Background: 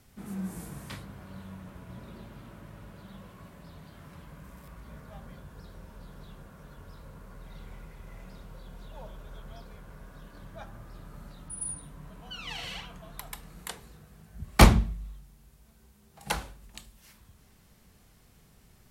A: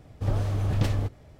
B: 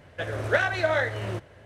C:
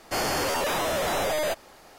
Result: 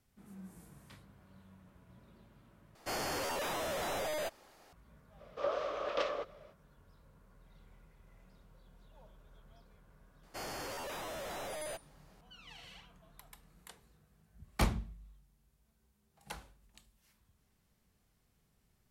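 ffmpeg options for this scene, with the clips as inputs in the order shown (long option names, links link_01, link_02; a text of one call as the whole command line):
ffmpeg -i bed.wav -i cue0.wav -i cue1.wav -i cue2.wav -filter_complex "[3:a]asplit=2[link_01][link_02];[0:a]volume=-15dB[link_03];[1:a]highpass=frequency=460:width=0.5412,highpass=frequency=460:width=1.3066,equalizer=frequency=560:width_type=q:width=4:gain=9,equalizer=frequency=820:width_type=q:width=4:gain=-8,equalizer=frequency=1200:width_type=q:width=4:gain=9,equalizer=frequency=1800:width_type=q:width=4:gain=-3,equalizer=frequency=4400:width_type=q:width=4:gain=-4,lowpass=frequency=5000:width=0.5412,lowpass=frequency=5000:width=1.3066[link_04];[link_03]asplit=2[link_05][link_06];[link_05]atrim=end=2.754[link_07];[link_01]atrim=end=1.98,asetpts=PTS-STARTPTS,volume=-10.5dB[link_08];[link_06]atrim=start=4.726[link_09];[link_04]atrim=end=1.39,asetpts=PTS-STARTPTS,volume=-0.5dB,afade=type=in:duration=0.05,afade=type=out:start_time=1.34:duration=0.05,adelay=5160[link_10];[link_02]atrim=end=1.98,asetpts=PTS-STARTPTS,volume=-16dB,afade=type=in:duration=0.004:curve=hsin,afade=type=out:start_time=1.976:duration=0.004:curve=hsin,adelay=10230[link_11];[link_07][link_08]acrossfade=duration=0.004:curve1=hsin:curve2=hsin[link_12];[link_12][link_09]acrossfade=duration=0.004:curve1=hsin:curve2=hsin[link_13];[link_13][link_10][link_11]amix=inputs=3:normalize=0" out.wav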